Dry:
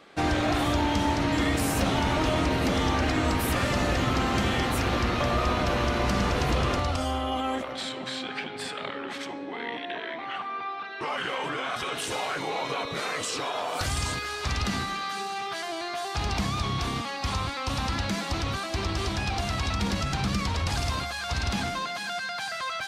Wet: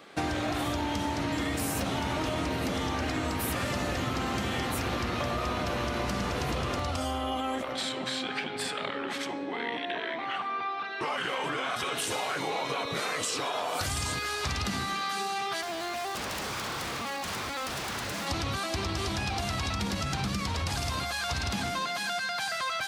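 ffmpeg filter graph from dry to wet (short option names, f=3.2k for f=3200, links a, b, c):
-filter_complex "[0:a]asettb=1/sr,asplit=3[a][b][c];[a]atrim=end=15.614[d];[b]atrim=start=15.61:end=18.27,asetpts=PTS-STARTPTS,afade=t=in:d=0.004:c=qsin,afade=t=out:st=2.656:d=0.004:c=qsin,lowpass=f=3.5k:p=1,aeval=exprs='0.0266*(abs(mod(val(0)/0.0266+3,4)-2)-1)':c=same[e];[c]atrim=start=18.266[f];[d][e]acrossfade=d=0.004:c1=hsin:c2=qsin[g];[g][f]acrossfade=d=0.004:c1=qsin:c2=hsin,highpass=65,highshelf=f=10k:g=8,acompressor=threshold=-29dB:ratio=6,volume=1.5dB"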